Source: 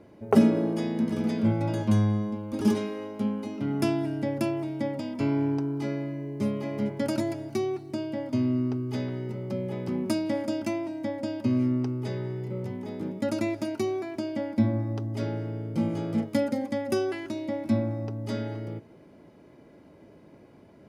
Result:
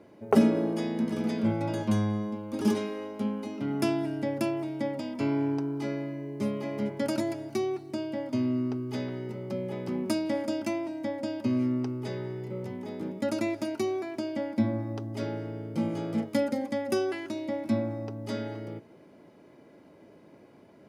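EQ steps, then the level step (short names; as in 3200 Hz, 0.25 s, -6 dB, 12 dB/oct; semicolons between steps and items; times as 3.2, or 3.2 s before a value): HPF 190 Hz 6 dB/oct; 0.0 dB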